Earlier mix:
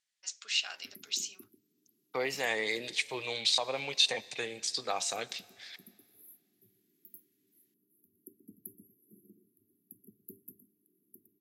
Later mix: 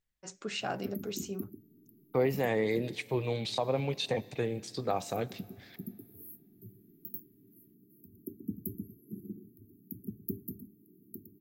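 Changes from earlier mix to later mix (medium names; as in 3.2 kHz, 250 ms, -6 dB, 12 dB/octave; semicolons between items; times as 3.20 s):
first voice: remove band-pass filter 3.6 kHz, Q 1; background +4.5 dB; master: remove frequency weighting ITU-R 468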